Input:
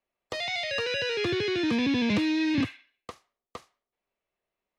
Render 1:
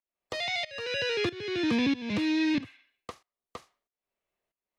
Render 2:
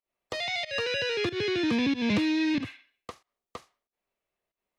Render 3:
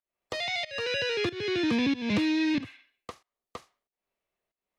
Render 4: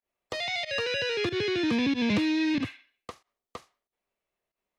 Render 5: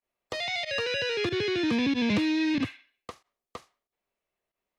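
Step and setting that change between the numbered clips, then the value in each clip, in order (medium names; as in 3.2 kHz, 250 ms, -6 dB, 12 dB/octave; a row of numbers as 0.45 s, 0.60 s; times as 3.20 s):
volume shaper, release: 536 ms, 161 ms, 315 ms, 95 ms, 64 ms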